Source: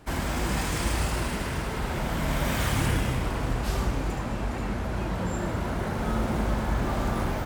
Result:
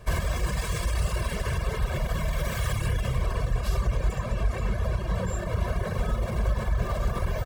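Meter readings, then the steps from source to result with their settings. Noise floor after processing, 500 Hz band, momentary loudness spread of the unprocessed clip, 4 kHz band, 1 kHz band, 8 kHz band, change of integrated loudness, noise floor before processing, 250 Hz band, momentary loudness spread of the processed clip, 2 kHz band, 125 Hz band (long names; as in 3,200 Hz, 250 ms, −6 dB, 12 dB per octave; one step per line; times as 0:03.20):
−33 dBFS, −1.0 dB, 5 LU, −3.0 dB, −4.0 dB, −3.0 dB, −0.5 dB, −32 dBFS, −6.5 dB, 2 LU, −2.5 dB, +1.5 dB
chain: brickwall limiter −22 dBFS, peak gain reduction 8.5 dB
low-shelf EQ 160 Hz +5 dB
reverb reduction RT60 0.89 s
comb filter 1.8 ms, depth 84%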